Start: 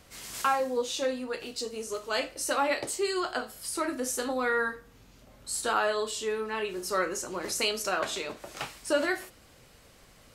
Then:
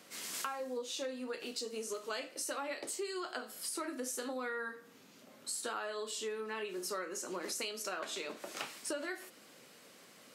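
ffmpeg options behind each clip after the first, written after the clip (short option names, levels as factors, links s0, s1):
-af "highpass=f=190:w=0.5412,highpass=f=190:w=1.3066,equalizer=f=800:t=o:w=0.77:g=-3,acompressor=threshold=0.0141:ratio=6"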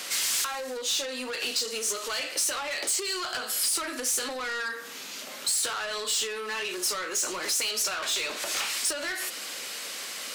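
-filter_complex "[0:a]asplit=2[s0][s1];[s1]highpass=f=720:p=1,volume=14.1,asoftclip=type=tanh:threshold=0.075[s2];[s0][s2]amix=inputs=2:normalize=0,lowpass=f=6600:p=1,volume=0.501,acompressor=threshold=0.02:ratio=6,highshelf=f=2100:g=11"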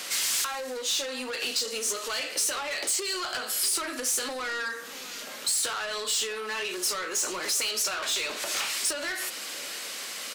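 -filter_complex "[0:a]asplit=2[s0][s1];[s1]adelay=641.4,volume=0.158,highshelf=f=4000:g=-14.4[s2];[s0][s2]amix=inputs=2:normalize=0"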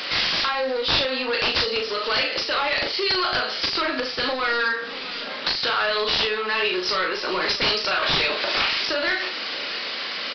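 -filter_complex "[0:a]aresample=11025,aeval=exprs='(mod(15.8*val(0)+1,2)-1)/15.8':c=same,aresample=44100,asplit=2[s0][s1];[s1]adelay=38,volume=0.531[s2];[s0][s2]amix=inputs=2:normalize=0,volume=2.66"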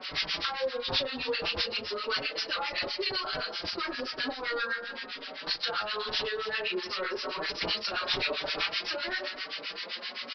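-filter_complex "[0:a]acrossover=split=1100[s0][s1];[s0]aeval=exprs='val(0)*(1-1/2+1/2*cos(2*PI*7.7*n/s))':c=same[s2];[s1]aeval=exprs='val(0)*(1-1/2-1/2*cos(2*PI*7.7*n/s))':c=same[s3];[s2][s3]amix=inputs=2:normalize=0,aecho=1:1:277:0.266,asplit=2[s4][s5];[s5]adelay=4.9,afreqshift=0.97[s6];[s4][s6]amix=inputs=2:normalize=1,volume=0.794"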